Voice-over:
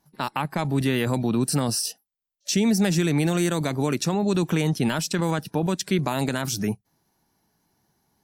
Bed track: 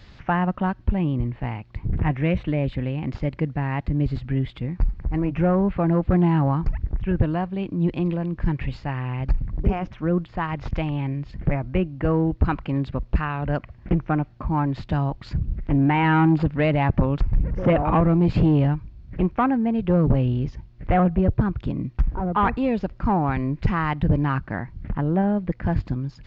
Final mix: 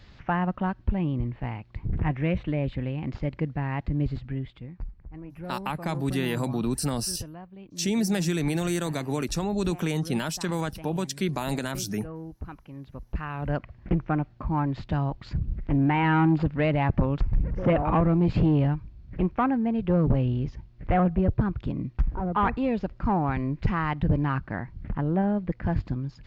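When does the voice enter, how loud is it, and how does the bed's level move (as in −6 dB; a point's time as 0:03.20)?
5.30 s, −4.5 dB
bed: 0:04.07 −4 dB
0:05.05 −18 dB
0:12.75 −18 dB
0:13.48 −3.5 dB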